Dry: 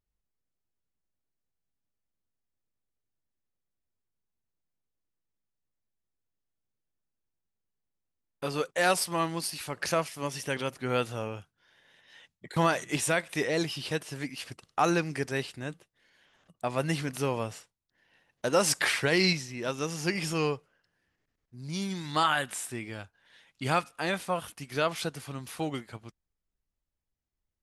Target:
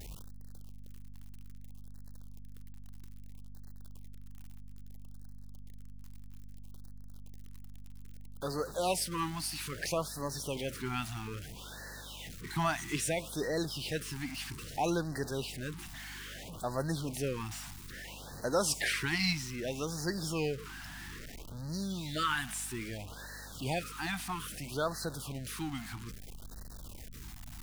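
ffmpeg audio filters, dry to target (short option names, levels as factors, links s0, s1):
-af "aeval=exprs='val(0)+0.5*0.02*sgn(val(0))':c=same,aeval=exprs='val(0)+0.00631*(sin(2*PI*50*n/s)+sin(2*PI*2*50*n/s)/2+sin(2*PI*3*50*n/s)/3+sin(2*PI*4*50*n/s)/4+sin(2*PI*5*50*n/s)/5)':c=same,afftfilt=real='re*(1-between(b*sr/1024,450*pow(2800/450,0.5+0.5*sin(2*PI*0.61*pts/sr))/1.41,450*pow(2800/450,0.5+0.5*sin(2*PI*0.61*pts/sr))*1.41))':imag='im*(1-between(b*sr/1024,450*pow(2800/450,0.5+0.5*sin(2*PI*0.61*pts/sr))/1.41,450*pow(2800/450,0.5+0.5*sin(2*PI*0.61*pts/sr))*1.41))':win_size=1024:overlap=0.75,volume=0.501"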